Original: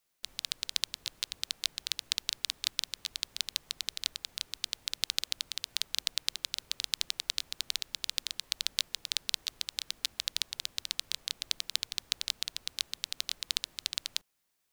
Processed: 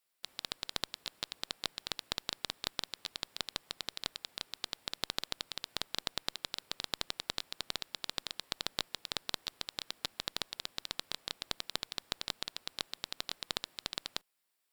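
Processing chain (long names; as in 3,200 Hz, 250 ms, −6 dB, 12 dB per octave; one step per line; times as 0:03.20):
high-pass filter 350 Hz 6 dB per octave
notch filter 6,300 Hz, Q 6
asymmetric clip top −22.5 dBFS
level −2 dB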